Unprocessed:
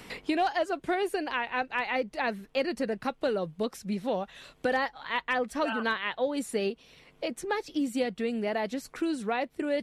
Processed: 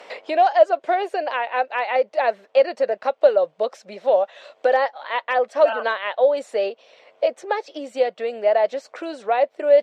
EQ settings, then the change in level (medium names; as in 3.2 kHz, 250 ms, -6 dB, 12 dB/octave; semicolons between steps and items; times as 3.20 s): boxcar filter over 4 samples; resonant high-pass 590 Hz, resonance Q 4.9; +3.5 dB